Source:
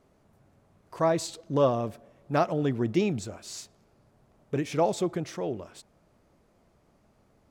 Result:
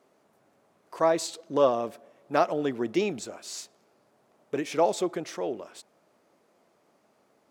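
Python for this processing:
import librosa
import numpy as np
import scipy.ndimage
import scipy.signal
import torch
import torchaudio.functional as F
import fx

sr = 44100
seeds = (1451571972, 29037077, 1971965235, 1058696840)

y = scipy.signal.sosfilt(scipy.signal.butter(2, 310.0, 'highpass', fs=sr, output='sos'), x)
y = y * librosa.db_to_amplitude(2.0)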